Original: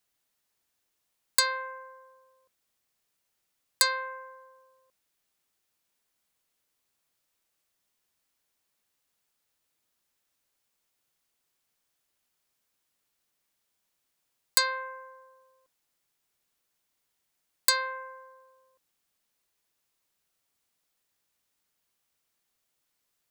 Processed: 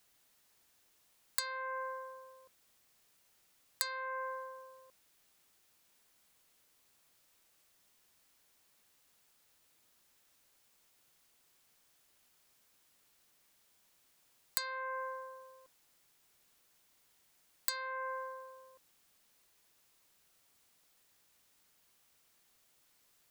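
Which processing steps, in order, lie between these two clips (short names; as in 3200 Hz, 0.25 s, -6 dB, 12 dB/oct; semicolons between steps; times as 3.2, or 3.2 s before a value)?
compressor 16:1, threshold -41 dBFS, peak gain reduction 24 dB; gain +8 dB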